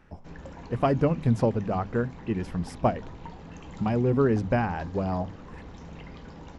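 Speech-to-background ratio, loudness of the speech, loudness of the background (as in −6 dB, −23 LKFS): 17.5 dB, −27.0 LKFS, −44.5 LKFS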